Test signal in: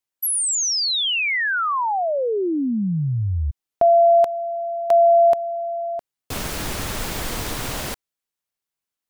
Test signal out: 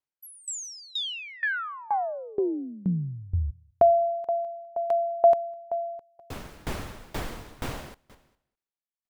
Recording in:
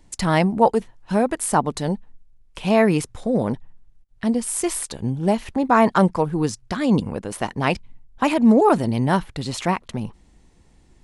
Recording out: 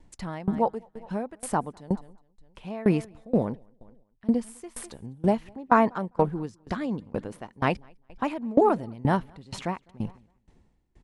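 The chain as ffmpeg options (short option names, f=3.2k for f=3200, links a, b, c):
-filter_complex "[0:a]highshelf=f=3.4k:g=-11,asplit=2[a][b];[b]aecho=0:1:204|408|612:0.0944|0.0406|0.0175[c];[a][c]amix=inputs=2:normalize=0,aeval=exprs='val(0)*pow(10,-24*if(lt(mod(2.1*n/s,1),2*abs(2.1)/1000),1-mod(2.1*n/s,1)/(2*abs(2.1)/1000),(mod(2.1*n/s,1)-2*abs(2.1)/1000)/(1-2*abs(2.1)/1000))/20)':c=same"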